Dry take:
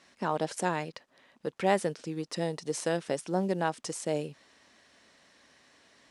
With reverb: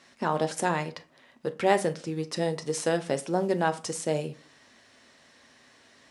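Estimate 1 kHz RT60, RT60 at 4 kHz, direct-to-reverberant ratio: 0.40 s, 0.25 s, 8.5 dB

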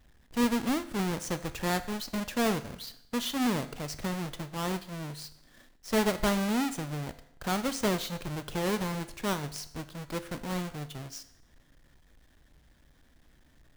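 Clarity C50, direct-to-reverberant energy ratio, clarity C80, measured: 14.5 dB, 11.0 dB, 17.5 dB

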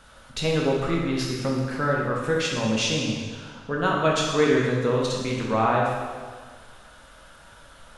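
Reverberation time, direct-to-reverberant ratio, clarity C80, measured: 1.6 s, -3.0 dB, 2.5 dB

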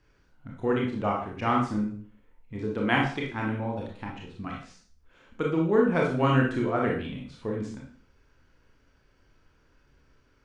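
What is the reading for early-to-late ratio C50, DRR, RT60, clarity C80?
3.0 dB, -2.0 dB, 0.45 s, 9.0 dB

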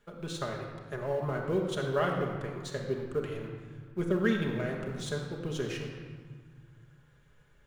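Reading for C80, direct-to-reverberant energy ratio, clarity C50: 5.0 dB, -0.5 dB, 3.5 dB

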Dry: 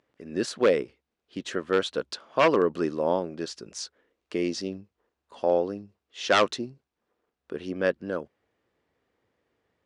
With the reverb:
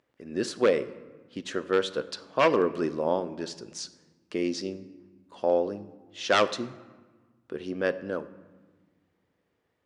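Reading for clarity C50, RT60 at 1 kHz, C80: 15.5 dB, 1.3 s, 17.5 dB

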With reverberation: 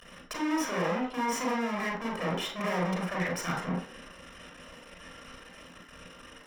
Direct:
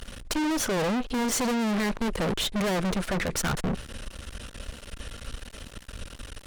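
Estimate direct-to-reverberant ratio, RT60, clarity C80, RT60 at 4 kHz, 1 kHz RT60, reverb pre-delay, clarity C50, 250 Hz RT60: -3.5 dB, 0.45 s, 10.5 dB, 0.40 s, 0.45 s, 30 ms, 4.5 dB, 0.40 s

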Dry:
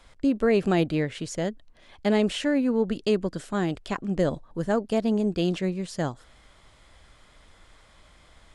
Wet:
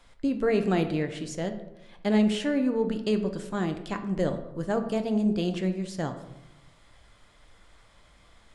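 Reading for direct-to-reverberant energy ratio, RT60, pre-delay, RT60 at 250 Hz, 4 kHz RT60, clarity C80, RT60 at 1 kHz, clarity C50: 6.5 dB, 1.0 s, 4 ms, 1.2 s, 0.50 s, 13.0 dB, 0.90 s, 10.0 dB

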